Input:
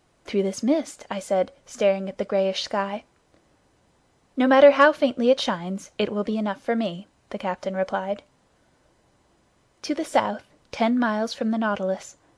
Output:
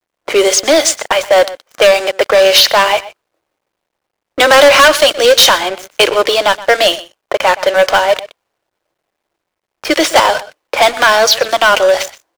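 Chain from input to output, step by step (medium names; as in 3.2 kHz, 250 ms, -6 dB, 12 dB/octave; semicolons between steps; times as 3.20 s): level-controlled noise filter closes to 770 Hz, open at -18 dBFS; Chebyshev high-pass 320 Hz, order 5; tilt EQ +4.5 dB/octave; in parallel at -1 dB: compression 12:1, threshold -35 dBFS, peak gain reduction 24 dB; on the sum: waveshaping leveller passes 5; word length cut 12-bit, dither none; echo from a far wall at 21 m, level -17 dB; trim +1.5 dB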